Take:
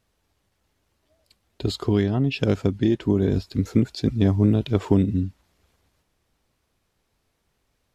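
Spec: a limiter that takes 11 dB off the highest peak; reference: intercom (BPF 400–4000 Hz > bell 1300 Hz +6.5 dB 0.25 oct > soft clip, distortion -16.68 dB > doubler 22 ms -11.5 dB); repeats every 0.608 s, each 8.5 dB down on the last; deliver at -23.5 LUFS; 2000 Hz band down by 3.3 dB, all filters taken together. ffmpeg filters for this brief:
-filter_complex "[0:a]equalizer=f=2k:t=o:g=-5,alimiter=limit=-16.5dB:level=0:latency=1,highpass=400,lowpass=4k,equalizer=f=1.3k:t=o:w=0.25:g=6.5,aecho=1:1:608|1216|1824|2432:0.376|0.143|0.0543|0.0206,asoftclip=threshold=-27dB,asplit=2[a][b];[b]adelay=22,volume=-11.5dB[c];[a][c]amix=inputs=2:normalize=0,volume=14dB"

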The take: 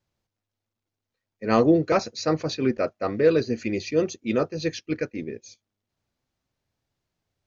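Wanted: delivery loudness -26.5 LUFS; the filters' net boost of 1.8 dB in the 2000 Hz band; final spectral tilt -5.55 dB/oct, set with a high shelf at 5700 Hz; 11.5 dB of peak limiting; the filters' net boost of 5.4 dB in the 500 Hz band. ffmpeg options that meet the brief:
-af "equalizer=f=500:t=o:g=6,equalizer=f=2k:t=o:g=3,highshelf=f=5.7k:g=-8,volume=-0.5dB,alimiter=limit=-15dB:level=0:latency=1"

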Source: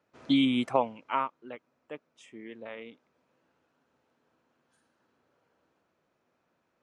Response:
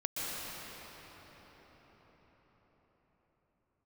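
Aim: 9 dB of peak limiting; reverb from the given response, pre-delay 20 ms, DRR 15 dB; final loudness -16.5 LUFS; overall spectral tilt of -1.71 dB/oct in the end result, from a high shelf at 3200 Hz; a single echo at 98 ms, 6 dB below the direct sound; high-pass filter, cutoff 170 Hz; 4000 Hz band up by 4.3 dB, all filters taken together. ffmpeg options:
-filter_complex "[0:a]highpass=170,highshelf=f=3.2k:g=4,equalizer=f=4k:t=o:g=3,alimiter=limit=-18.5dB:level=0:latency=1,aecho=1:1:98:0.501,asplit=2[a][b];[1:a]atrim=start_sample=2205,adelay=20[c];[b][c]afir=irnorm=-1:irlink=0,volume=-21dB[d];[a][d]amix=inputs=2:normalize=0,volume=15.5dB"

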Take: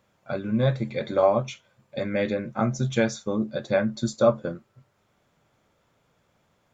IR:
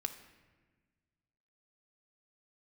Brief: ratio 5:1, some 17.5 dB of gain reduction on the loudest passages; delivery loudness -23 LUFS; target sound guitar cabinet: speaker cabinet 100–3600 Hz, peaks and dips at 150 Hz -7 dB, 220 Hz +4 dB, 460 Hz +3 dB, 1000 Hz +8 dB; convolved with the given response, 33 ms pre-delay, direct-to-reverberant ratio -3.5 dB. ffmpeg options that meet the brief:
-filter_complex "[0:a]acompressor=threshold=-35dB:ratio=5,asplit=2[a][b];[1:a]atrim=start_sample=2205,adelay=33[c];[b][c]afir=irnorm=-1:irlink=0,volume=3.5dB[d];[a][d]amix=inputs=2:normalize=0,highpass=100,equalizer=f=150:t=q:w=4:g=-7,equalizer=f=220:t=q:w=4:g=4,equalizer=f=460:t=q:w=4:g=3,equalizer=f=1k:t=q:w=4:g=8,lowpass=f=3.6k:w=0.5412,lowpass=f=3.6k:w=1.3066,volume=10dB"

